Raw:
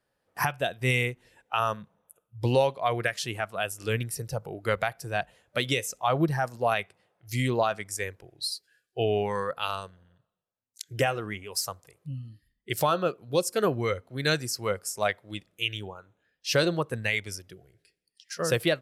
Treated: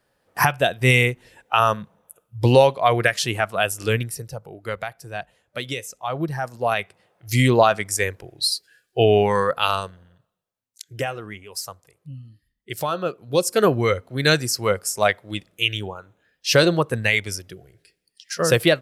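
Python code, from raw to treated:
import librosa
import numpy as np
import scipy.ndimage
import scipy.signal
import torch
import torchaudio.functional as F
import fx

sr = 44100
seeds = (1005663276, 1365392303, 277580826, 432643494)

y = fx.gain(x, sr, db=fx.line((3.82, 9.0), (4.38, -2.0), (6.13, -2.0), (7.32, 10.0), (9.79, 10.0), (10.98, -1.0), (12.83, -1.0), (13.58, 8.0)))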